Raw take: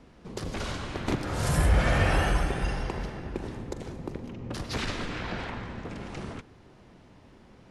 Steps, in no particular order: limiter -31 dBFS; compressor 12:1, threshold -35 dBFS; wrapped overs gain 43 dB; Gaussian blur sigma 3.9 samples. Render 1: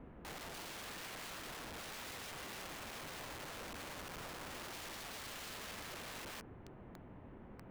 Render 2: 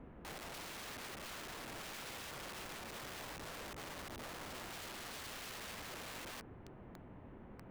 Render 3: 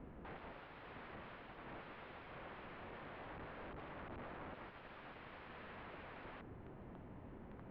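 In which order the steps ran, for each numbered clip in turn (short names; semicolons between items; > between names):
limiter > Gaussian blur > compressor > wrapped overs; compressor > limiter > Gaussian blur > wrapped overs; compressor > limiter > wrapped overs > Gaussian blur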